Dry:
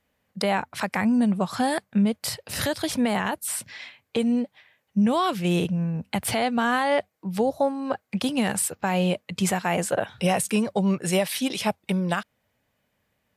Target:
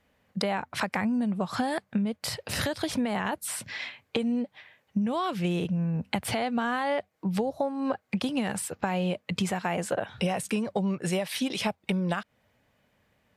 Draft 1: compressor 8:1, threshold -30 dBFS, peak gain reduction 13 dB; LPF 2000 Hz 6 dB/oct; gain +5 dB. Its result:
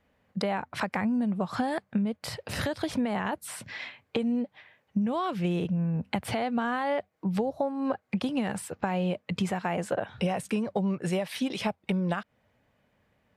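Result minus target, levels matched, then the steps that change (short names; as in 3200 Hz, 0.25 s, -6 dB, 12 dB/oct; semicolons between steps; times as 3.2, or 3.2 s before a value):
4000 Hz band -3.5 dB
change: LPF 4800 Hz 6 dB/oct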